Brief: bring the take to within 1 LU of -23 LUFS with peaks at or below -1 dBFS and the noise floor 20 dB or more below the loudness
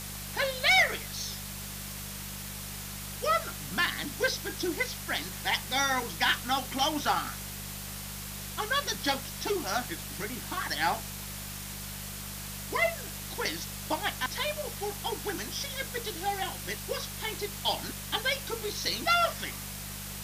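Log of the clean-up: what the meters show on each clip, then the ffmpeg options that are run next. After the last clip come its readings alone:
hum 50 Hz; harmonics up to 200 Hz; hum level -42 dBFS; noise floor -40 dBFS; noise floor target -51 dBFS; loudness -31.0 LUFS; peak -14.5 dBFS; loudness target -23.0 LUFS
-> -af "bandreject=f=50:t=h:w=4,bandreject=f=100:t=h:w=4,bandreject=f=150:t=h:w=4,bandreject=f=200:t=h:w=4"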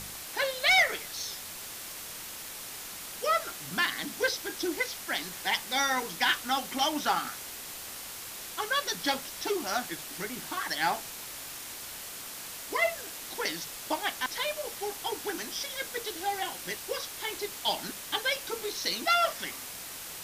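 hum none; noise floor -42 dBFS; noise floor target -51 dBFS
-> -af "afftdn=nr=9:nf=-42"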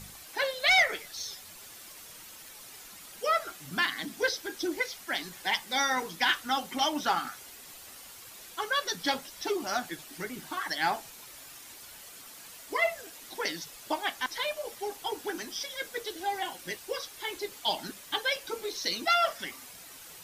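noise floor -49 dBFS; noise floor target -51 dBFS
-> -af "afftdn=nr=6:nf=-49"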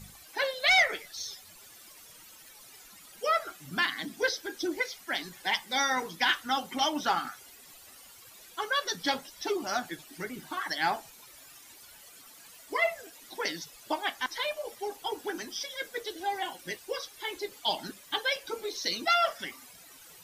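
noise floor -53 dBFS; loudness -31.0 LUFS; peak -15.0 dBFS; loudness target -23.0 LUFS
-> -af "volume=8dB"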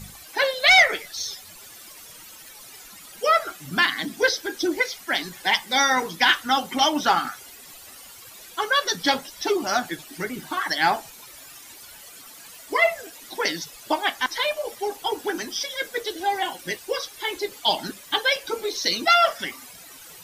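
loudness -23.0 LUFS; peak -7.0 dBFS; noise floor -45 dBFS

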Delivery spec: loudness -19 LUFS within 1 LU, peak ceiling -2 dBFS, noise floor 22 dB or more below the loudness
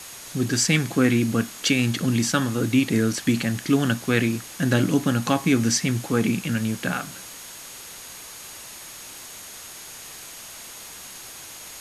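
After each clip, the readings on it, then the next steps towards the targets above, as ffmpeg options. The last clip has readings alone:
steady tone 6600 Hz; tone level -46 dBFS; noise floor -40 dBFS; noise floor target -45 dBFS; loudness -22.5 LUFS; peak -6.0 dBFS; loudness target -19.0 LUFS
-> -af "bandreject=f=6.6k:w=30"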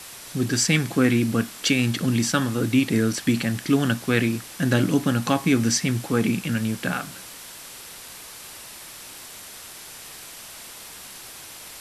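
steady tone none; noise floor -41 dBFS; noise floor target -45 dBFS
-> -af "afftdn=nr=6:nf=-41"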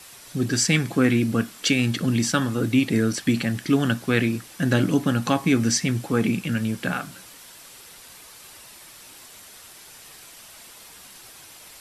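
noise floor -46 dBFS; loudness -22.5 LUFS; peak -6.0 dBFS; loudness target -19.0 LUFS
-> -af "volume=3.5dB"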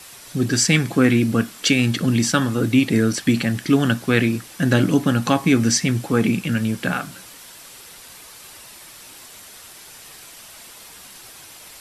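loudness -19.0 LUFS; peak -2.5 dBFS; noise floor -42 dBFS

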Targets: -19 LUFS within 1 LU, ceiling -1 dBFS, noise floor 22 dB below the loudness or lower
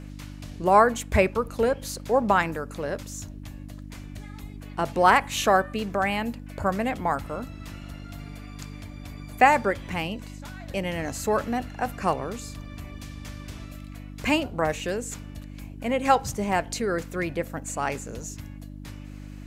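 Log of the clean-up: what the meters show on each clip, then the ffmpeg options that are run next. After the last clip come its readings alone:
hum 50 Hz; harmonics up to 300 Hz; hum level -37 dBFS; loudness -25.5 LUFS; peak -5.0 dBFS; loudness target -19.0 LUFS
-> -af "bandreject=f=50:t=h:w=4,bandreject=f=100:t=h:w=4,bandreject=f=150:t=h:w=4,bandreject=f=200:t=h:w=4,bandreject=f=250:t=h:w=4,bandreject=f=300:t=h:w=4"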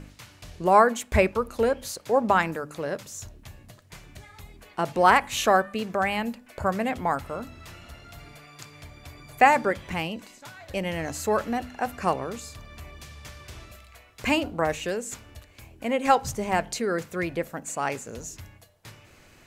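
hum none; loudness -25.5 LUFS; peak -4.5 dBFS; loudness target -19.0 LUFS
-> -af "volume=6.5dB,alimiter=limit=-1dB:level=0:latency=1"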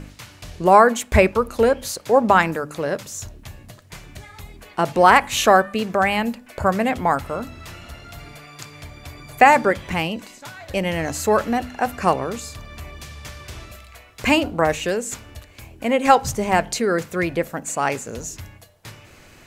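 loudness -19.5 LUFS; peak -1.0 dBFS; noise floor -48 dBFS

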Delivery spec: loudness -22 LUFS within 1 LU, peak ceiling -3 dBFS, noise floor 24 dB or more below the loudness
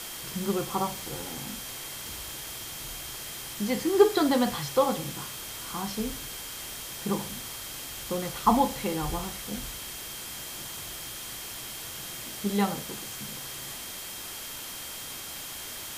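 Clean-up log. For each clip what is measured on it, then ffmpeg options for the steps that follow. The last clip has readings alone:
steady tone 3200 Hz; tone level -47 dBFS; noise floor -39 dBFS; noise floor target -55 dBFS; loudness -31.0 LUFS; peak -8.0 dBFS; loudness target -22.0 LUFS
-> -af "bandreject=f=3.2k:w=30"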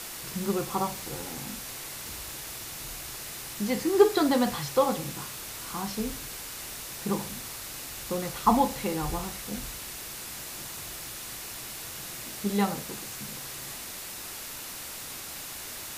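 steady tone none; noise floor -40 dBFS; noise floor target -55 dBFS
-> -af "afftdn=nr=15:nf=-40"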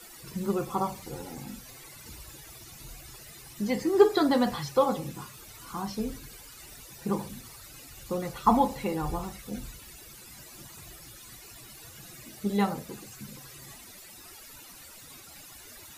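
noise floor -49 dBFS; noise floor target -53 dBFS
-> -af "afftdn=nr=6:nf=-49"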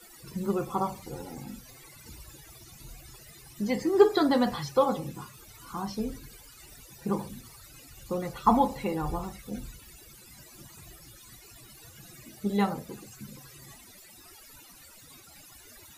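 noise floor -52 dBFS; noise floor target -53 dBFS
-> -af "afftdn=nr=6:nf=-52"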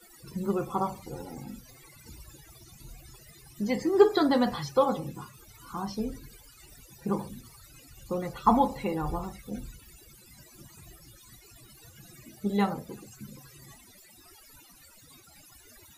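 noise floor -55 dBFS; loudness -29.0 LUFS; peak -8.0 dBFS; loudness target -22.0 LUFS
-> -af "volume=7dB,alimiter=limit=-3dB:level=0:latency=1"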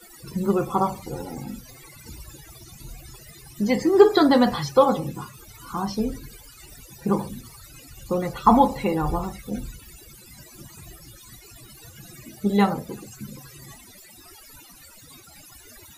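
loudness -22.5 LUFS; peak -3.0 dBFS; noise floor -48 dBFS

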